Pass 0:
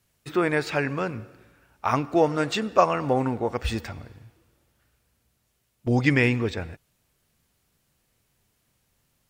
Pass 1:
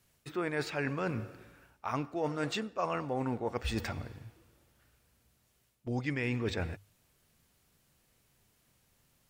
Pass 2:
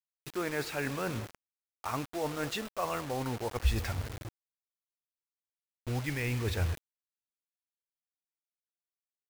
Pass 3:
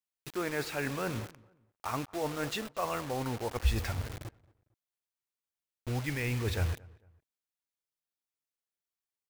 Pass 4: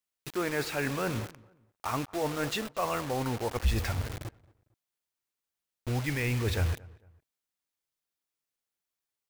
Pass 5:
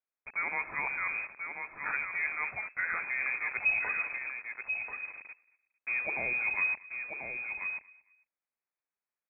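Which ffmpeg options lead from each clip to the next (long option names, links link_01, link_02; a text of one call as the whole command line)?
ffmpeg -i in.wav -af "bandreject=frequency=50:width_type=h:width=6,bandreject=frequency=100:width_type=h:width=6,areverse,acompressor=threshold=-30dB:ratio=10,areverse" out.wav
ffmpeg -i in.wav -af "asubboost=boost=7:cutoff=75,acrusher=bits=6:mix=0:aa=0.000001" out.wav
ffmpeg -i in.wav -filter_complex "[0:a]asplit=2[link_01][link_02];[link_02]adelay=226,lowpass=frequency=1900:poles=1,volume=-23dB,asplit=2[link_03][link_04];[link_04]adelay=226,lowpass=frequency=1900:poles=1,volume=0.34[link_05];[link_01][link_03][link_05]amix=inputs=3:normalize=0" out.wav
ffmpeg -i in.wav -af "asoftclip=type=tanh:threshold=-21.5dB,volume=3.5dB" out.wav
ffmpeg -i in.wav -af "aecho=1:1:1037:0.473,lowpass=frequency=2200:width_type=q:width=0.5098,lowpass=frequency=2200:width_type=q:width=0.6013,lowpass=frequency=2200:width_type=q:width=0.9,lowpass=frequency=2200:width_type=q:width=2.563,afreqshift=-2600,volume=-2.5dB" out.wav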